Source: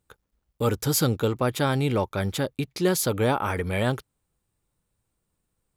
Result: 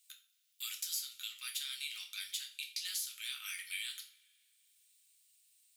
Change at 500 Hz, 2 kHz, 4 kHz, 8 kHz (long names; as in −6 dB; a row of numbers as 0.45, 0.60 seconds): below −40 dB, −12.0 dB, −4.0 dB, −8.5 dB